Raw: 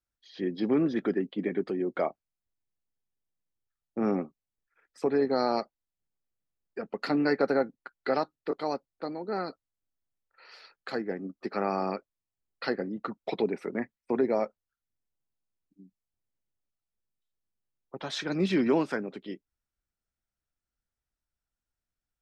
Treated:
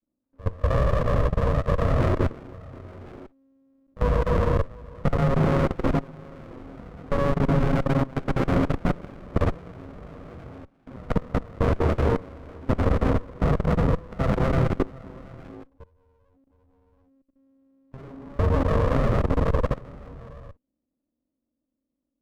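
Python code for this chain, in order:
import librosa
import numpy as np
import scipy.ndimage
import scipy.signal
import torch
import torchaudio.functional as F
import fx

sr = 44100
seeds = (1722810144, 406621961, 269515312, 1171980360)

p1 = fx.tracing_dist(x, sr, depth_ms=0.13)
p2 = fx.tilt_eq(p1, sr, slope=-3.0)
p3 = p2 + fx.echo_single(p2, sr, ms=728, db=-9.5, dry=0)
p4 = p3 * np.sin(2.0 * np.pi * 270.0 * np.arange(len(p3)) / sr)
p5 = fx.peak_eq(p4, sr, hz=300.0, db=-2.5, octaves=0.35)
p6 = fx.rev_gated(p5, sr, seeds[0], gate_ms=490, shape='flat', drr_db=-6.5)
p7 = np.where(np.abs(p6) >= 10.0 ** (-22.5 / 20.0), p6, 0.0)
p8 = p6 + (p7 * 10.0 ** (-11.0 / 20.0))
p9 = fx.rider(p8, sr, range_db=3, speed_s=0.5)
p10 = scipy.signal.sosfilt(scipy.signal.butter(6, 1200.0, 'lowpass', fs=sr, output='sos'), p9)
p11 = fx.level_steps(p10, sr, step_db=21)
p12 = fx.running_max(p11, sr, window=33)
y = p12 * 10.0 ** (2.5 / 20.0)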